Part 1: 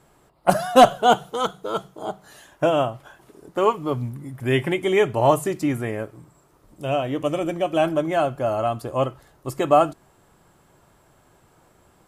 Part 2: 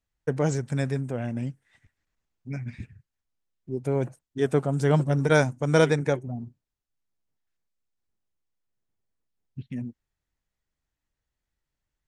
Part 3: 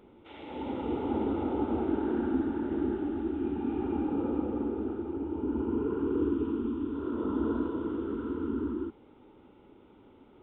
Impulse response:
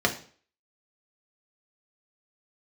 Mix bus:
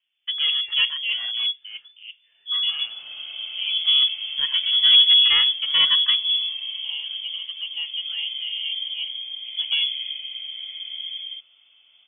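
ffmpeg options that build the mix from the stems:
-filter_complex "[0:a]bandpass=frequency=520:width_type=q:width=1:csg=0,volume=-16.5dB[link_01];[1:a]asubboost=boost=4:cutoff=150,asoftclip=type=tanh:threshold=-13dB,asplit=2[link_02][link_03];[link_03]adelay=2.1,afreqshift=-0.84[link_04];[link_02][link_04]amix=inputs=2:normalize=1,volume=-1dB[link_05];[2:a]adelay=2500,volume=-8dB[link_06];[link_01][link_05][link_06]amix=inputs=3:normalize=0,dynaudnorm=framelen=150:gausssize=5:maxgain=7dB,lowpass=frequency=3000:width_type=q:width=0.5098,lowpass=frequency=3000:width_type=q:width=0.6013,lowpass=frequency=3000:width_type=q:width=0.9,lowpass=frequency=3000:width_type=q:width=2.563,afreqshift=-3500"

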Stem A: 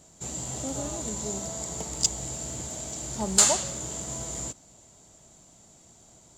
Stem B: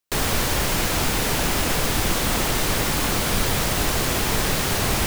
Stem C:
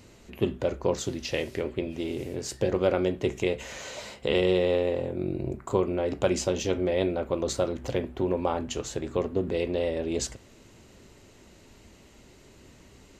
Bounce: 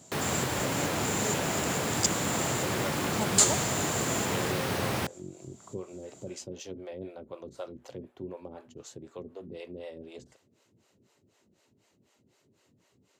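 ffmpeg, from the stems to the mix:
ffmpeg -i stem1.wav -i stem2.wav -i stem3.wav -filter_complex "[0:a]volume=1dB[link_01];[1:a]highshelf=frequency=3400:gain=-9,volume=-5.5dB[link_02];[2:a]acrossover=split=450[link_03][link_04];[link_03]aeval=exprs='val(0)*(1-1/2+1/2*cos(2*PI*4*n/s))':channel_layout=same[link_05];[link_04]aeval=exprs='val(0)*(1-1/2-1/2*cos(2*PI*4*n/s))':channel_layout=same[link_06];[link_05][link_06]amix=inputs=2:normalize=0,equalizer=frequency=2200:width=1.5:gain=-2.5,volume=-9dB,asplit=2[link_07][link_08];[link_08]apad=whole_len=280976[link_09];[link_01][link_09]sidechaincompress=threshold=-43dB:ratio=8:attack=16:release=265[link_10];[link_10][link_02][link_07]amix=inputs=3:normalize=0,highpass=frequency=95:width=0.5412,highpass=frequency=95:width=1.3066" out.wav

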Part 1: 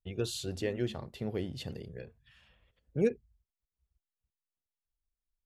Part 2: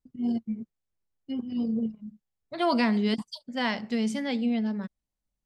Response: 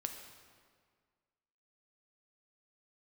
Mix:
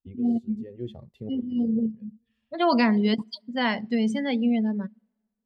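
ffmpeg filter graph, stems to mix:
-filter_complex "[0:a]bandreject=frequency=1500:width=10,volume=0dB[link_01];[1:a]volume=2.5dB,asplit=3[link_02][link_03][link_04];[link_03]volume=-17dB[link_05];[link_04]apad=whole_len=240602[link_06];[link_01][link_06]sidechaincompress=threshold=-42dB:ratio=4:attack=6:release=272[link_07];[2:a]atrim=start_sample=2205[link_08];[link_05][link_08]afir=irnorm=-1:irlink=0[link_09];[link_07][link_02][link_09]amix=inputs=3:normalize=0,afftdn=noise_reduction=17:noise_floor=-34"

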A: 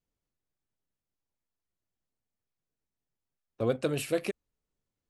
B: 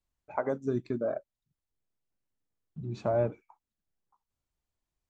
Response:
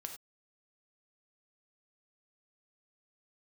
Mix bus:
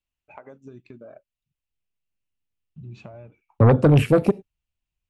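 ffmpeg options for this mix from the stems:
-filter_complex "[0:a]afwtdn=0.0126,agate=range=-26dB:threshold=-48dB:ratio=16:detection=peak,lowshelf=frequency=370:gain=5.5,volume=3dB,asplit=2[link_01][link_02];[link_02]volume=-10dB[link_03];[1:a]equalizer=frequency=2700:width=2.4:gain=13.5,acompressor=threshold=-34dB:ratio=16,volume=-14.5dB[link_04];[2:a]atrim=start_sample=2205[link_05];[link_03][link_05]afir=irnorm=-1:irlink=0[link_06];[link_01][link_04][link_06]amix=inputs=3:normalize=0,asubboost=boost=2.5:cutoff=210,aeval=exprs='0.447*(cos(1*acos(clip(val(0)/0.447,-1,1)))-cos(1*PI/2))+0.178*(cos(5*acos(clip(val(0)/0.447,-1,1)))-cos(5*PI/2))':channel_layout=same"

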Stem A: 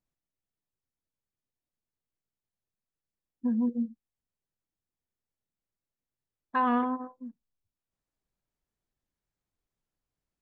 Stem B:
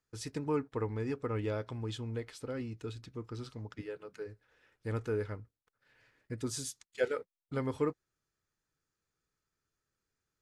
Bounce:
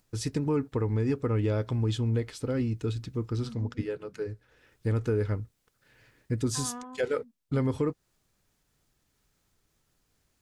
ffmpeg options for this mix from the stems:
ffmpeg -i stem1.wav -i stem2.wav -filter_complex "[0:a]acompressor=mode=upward:threshold=-38dB:ratio=2.5,volume=-14.5dB[link_01];[1:a]lowshelf=frequency=430:gain=11,alimiter=limit=-20.5dB:level=0:latency=1:release=147,volume=2.5dB,asplit=2[link_02][link_03];[link_03]apad=whole_len=459202[link_04];[link_01][link_04]sidechaincompress=threshold=-27dB:ratio=8:attack=49:release=671[link_05];[link_05][link_02]amix=inputs=2:normalize=0,equalizer=frequency=6800:width=0.3:gain=4.5" out.wav

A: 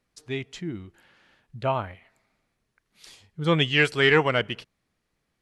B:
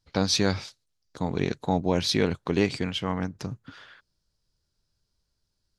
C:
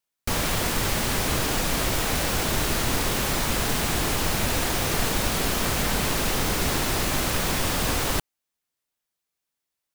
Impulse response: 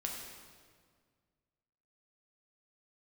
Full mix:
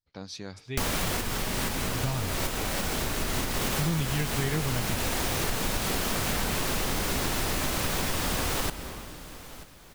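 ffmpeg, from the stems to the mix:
-filter_complex "[0:a]asubboost=boost=11.5:cutoff=200,adelay=400,volume=-5.5dB[link_01];[1:a]volume=-16.5dB,asplit=2[link_02][link_03];[2:a]adelay=500,volume=1dB,asplit=3[link_04][link_05][link_06];[link_05]volume=-7.5dB[link_07];[link_06]volume=-22dB[link_08];[link_03]apad=whole_len=460816[link_09];[link_04][link_09]sidechaincompress=threshold=-57dB:ratio=8:attack=16:release=150[link_10];[3:a]atrim=start_sample=2205[link_11];[link_07][link_11]afir=irnorm=-1:irlink=0[link_12];[link_08]aecho=0:1:936|1872|2808|3744|4680|5616:1|0.45|0.202|0.0911|0.041|0.0185[link_13];[link_01][link_02][link_10][link_12][link_13]amix=inputs=5:normalize=0,acompressor=threshold=-25dB:ratio=6"

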